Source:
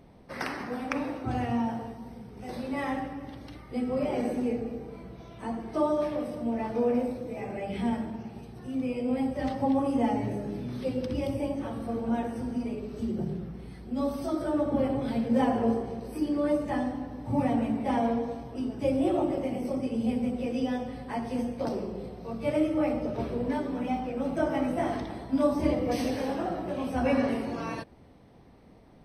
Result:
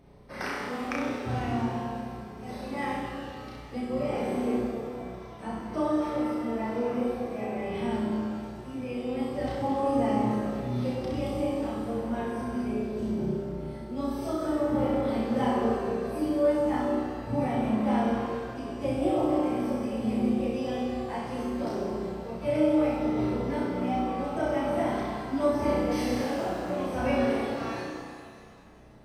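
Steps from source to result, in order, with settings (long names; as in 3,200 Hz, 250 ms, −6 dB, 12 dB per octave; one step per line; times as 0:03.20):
flutter between parallel walls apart 5.6 metres, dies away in 0.72 s
reverb with rising layers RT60 1.9 s, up +7 semitones, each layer −8 dB, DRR 4 dB
level −3.5 dB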